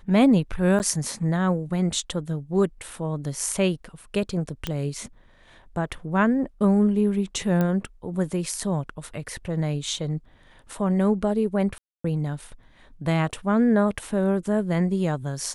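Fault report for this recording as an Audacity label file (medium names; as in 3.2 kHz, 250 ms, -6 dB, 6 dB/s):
0.790000	0.800000	dropout 9.3 ms
4.670000	4.670000	pop -12 dBFS
7.610000	7.610000	pop -13 dBFS
11.780000	12.040000	dropout 264 ms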